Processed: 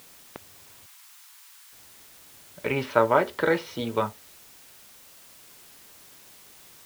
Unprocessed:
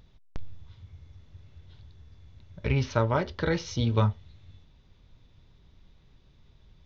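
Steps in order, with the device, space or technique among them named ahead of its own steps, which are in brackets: shortwave radio (band-pass 330–2700 Hz; tremolo 0.32 Hz, depth 60%; white noise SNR 20 dB); 0.86–1.73 s: steep high-pass 850 Hz 48 dB/octave; trim +7.5 dB

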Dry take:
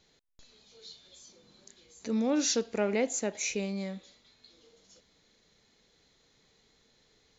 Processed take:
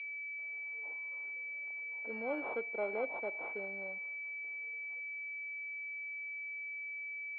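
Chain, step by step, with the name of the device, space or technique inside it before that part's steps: toy sound module (decimation joined by straight lines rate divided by 4×; class-D stage that switches slowly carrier 2.3 kHz; cabinet simulation 690–3600 Hz, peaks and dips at 1.2 kHz -6 dB, 1.8 kHz -9 dB, 2.8 kHz +4 dB)

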